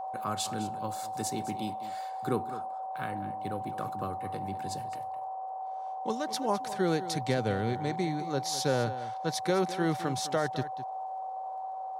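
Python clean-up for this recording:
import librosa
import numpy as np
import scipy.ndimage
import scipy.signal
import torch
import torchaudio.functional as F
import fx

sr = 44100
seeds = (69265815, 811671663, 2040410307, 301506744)

y = fx.fix_declick_ar(x, sr, threshold=6.5)
y = fx.notch(y, sr, hz=760.0, q=30.0)
y = fx.noise_reduce(y, sr, print_start_s=5.35, print_end_s=5.85, reduce_db=30.0)
y = fx.fix_echo_inverse(y, sr, delay_ms=208, level_db=-14.0)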